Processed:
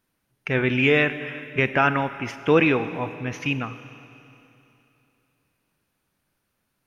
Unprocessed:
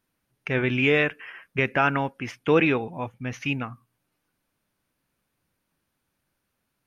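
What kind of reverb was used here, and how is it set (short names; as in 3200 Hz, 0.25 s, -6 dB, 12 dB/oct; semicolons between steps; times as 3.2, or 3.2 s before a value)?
Schroeder reverb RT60 3 s, combs from 30 ms, DRR 11.5 dB; gain +2 dB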